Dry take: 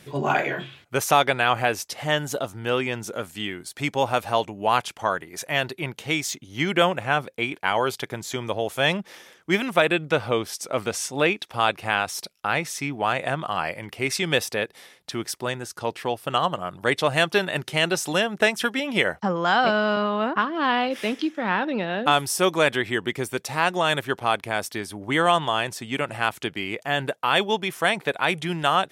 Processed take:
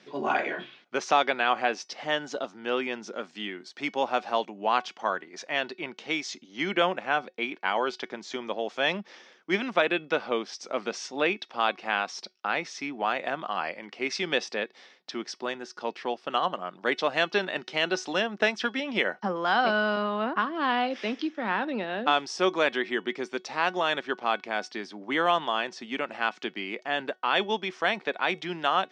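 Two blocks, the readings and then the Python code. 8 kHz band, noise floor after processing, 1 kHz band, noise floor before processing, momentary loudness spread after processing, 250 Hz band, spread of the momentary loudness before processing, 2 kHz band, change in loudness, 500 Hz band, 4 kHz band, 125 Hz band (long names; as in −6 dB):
−11.5 dB, −59 dBFS, −4.0 dB, −56 dBFS, 10 LU, −5.0 dB, 9 LU, −4.0 dB, −4.5 dB, −4.5 dB, −5.0 dB, −14.5 dB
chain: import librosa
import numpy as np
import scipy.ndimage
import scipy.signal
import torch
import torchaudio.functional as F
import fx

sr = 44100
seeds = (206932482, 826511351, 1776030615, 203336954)

y = scipy.signal.sosfilt(scipy.signal.ellip(3, 1.0, 40, [210.0, 5500.0], 'bandpass', fs=sr, output='sos'), x)
y = fx.comb_fb(y, sr, f0_hz=370.0, decay_s=0.21, harmonics='all', damping=0.0, mix_pct=40)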